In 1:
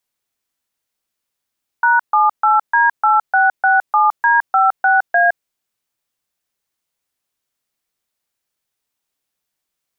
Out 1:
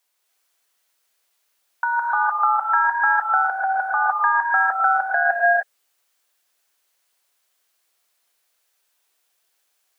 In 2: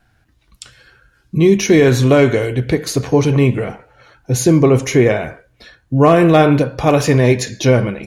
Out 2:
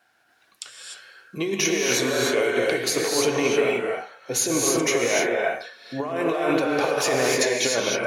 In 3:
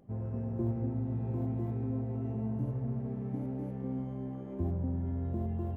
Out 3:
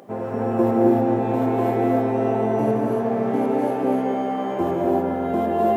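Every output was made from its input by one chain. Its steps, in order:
high-pass filter 490 Hz 12 dB per octave
compressor whose output falls as the input rises −20 dBFS, ratio −1
reverb whose tail is shaped and stops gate 330 ms rising, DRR −1.5 dB
normalise the peak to −6 dBFS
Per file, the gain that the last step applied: −1.5, −4.5, +23.0 decibels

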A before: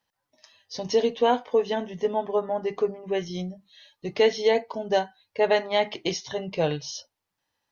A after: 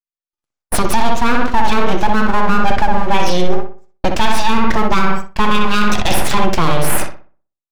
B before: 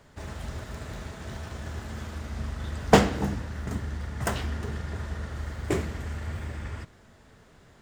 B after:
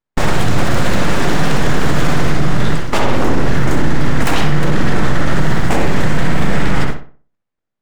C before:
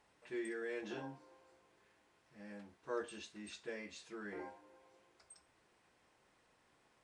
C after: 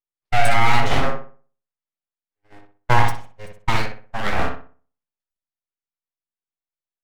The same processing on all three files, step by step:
bass and treble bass +1 dB, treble −3 dB
noise gate −46 dBFS, range −57 dB
full-wave rectification
feedback echo with a low-pass in the loop 62 ms, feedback 36%, low-pass 2,300 Hz, level −4 dB
reversed playback
downward compressor 12 to 1, threshold −27 dBFS
reversed playback
boost into a limiter +28.5 dB
level −1 dB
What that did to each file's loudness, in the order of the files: +9.0, +13.5, +24.5 LU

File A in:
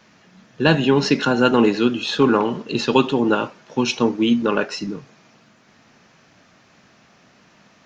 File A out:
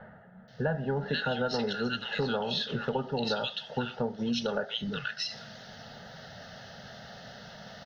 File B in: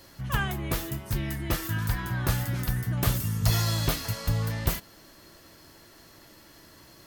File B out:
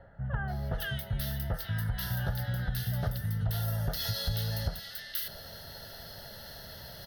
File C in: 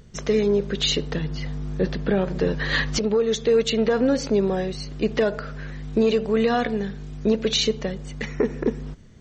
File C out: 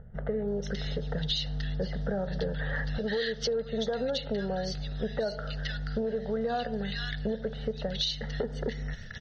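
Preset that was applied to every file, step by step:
multiband delay without the direct sound lows, highs 480 ms, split 1,700 Hz
reversed playback
upward compression, threshold −34 dBFS
reversed playback
phaser with its sweep stopped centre 1,600 Hz, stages 8
downward compressor 4 to 1, threshold −30 dBFS
level +1.5 dB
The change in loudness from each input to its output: −13.0, −5.5, −9.0 LU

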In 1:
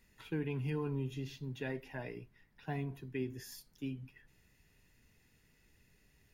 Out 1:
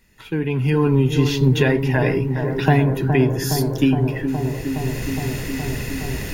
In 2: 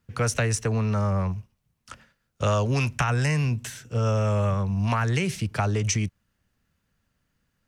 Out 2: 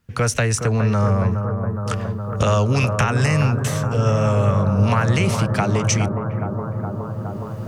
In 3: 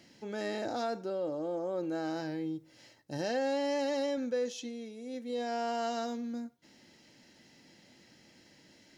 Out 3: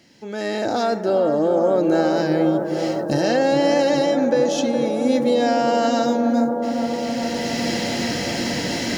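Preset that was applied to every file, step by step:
camcorder AGC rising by 13 dB per second
on a send: bucket-brigade delay 416 ms, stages 4,096, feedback 82%, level −7 dB
on the sum: loudness normalisation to −20 LKFS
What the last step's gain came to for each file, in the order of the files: +9.0, +4.5, +4.5 decibels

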